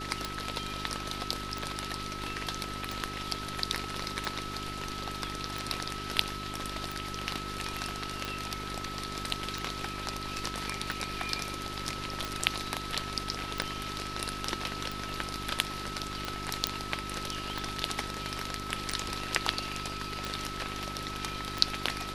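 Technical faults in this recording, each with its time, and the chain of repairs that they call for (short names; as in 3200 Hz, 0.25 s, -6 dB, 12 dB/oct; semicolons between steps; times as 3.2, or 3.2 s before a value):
hum 50 Hz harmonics 8 -42 dBFS
tick 45 rpm
tone 1300 Hz -40 dBFS
13.62 pop -16 dBFS
16.67 pop -9 dBFS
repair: de-click; de-hum 50 Hz, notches 8; notch 1300 Hz, Q 30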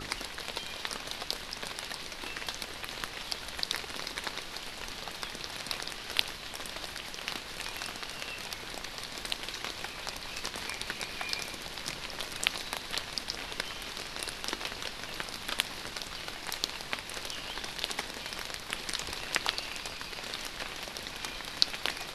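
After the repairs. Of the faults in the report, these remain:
13.62 pop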